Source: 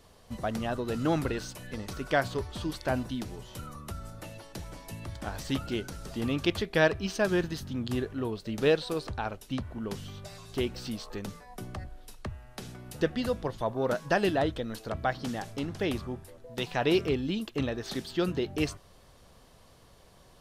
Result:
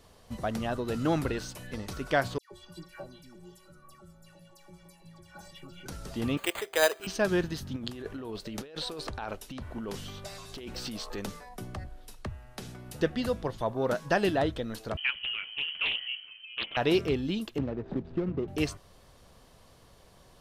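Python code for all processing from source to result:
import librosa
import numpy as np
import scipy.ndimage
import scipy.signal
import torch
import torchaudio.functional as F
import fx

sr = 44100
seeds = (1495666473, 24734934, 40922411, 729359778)

y = fx.chain(x, sr, fx.stiff_resonator(f0_hz=170.0, decay_s=0.26, stiffness=0.03),
    fx.dispersion(late='lows', ms=133.0, hz=1700.0),
    fx.echo_single(ms=886, db=-23.0), at=(2.38, 5.86))
y = fx.chain(y, sr, fx.highpass(hz=420.0, slope=24),
    fx.resample_bad(factor=8, down='none', up='hold'), at=(6.37, 7.07))
y = fx.chain(y, sr, fx.over_compress(threshold_db=-36.0, ratio=-1.0),
    fx.peak_eq(hz=110.0, db=-6.5, octaves=2.0), at=(7.76, 11.49))
y = fx.chain(y, sr, fx.high_shelf(hz=2400.0, db=-10.0),
    fx.freq_invert(carrier_hz=3100),
    fx.doppler_dist(depth_ms=0.53), at=(14.97, 16.77))
y = fx.chain(y, sr, fx.median_filter(points=41),
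    fx.spacing_loss(db_at_10k=32),
    fx.band_squash(depth_pct=100), at=(17.58, 18.48))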